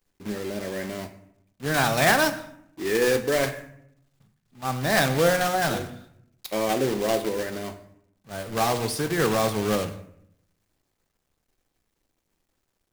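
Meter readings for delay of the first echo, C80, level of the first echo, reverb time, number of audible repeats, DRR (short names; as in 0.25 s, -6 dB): none, 15.5 dB, none, 0.75 s, none, 8.0 dB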